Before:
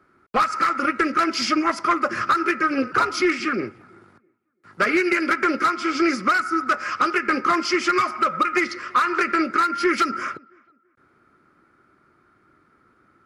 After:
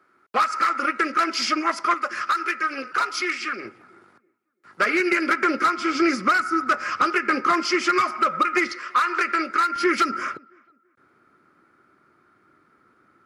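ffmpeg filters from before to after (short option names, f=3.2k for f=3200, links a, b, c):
-af "asetnsamples=n=441:p=0,asendcmd='1.94 highpass f 1300;3.65 highpass f 400;5 highpass f 170;5.79 highpass f 58;7.02 highpass f 180;8.72 highpass f 650;9.76 highpass f 150',highpass=f=500:p=1"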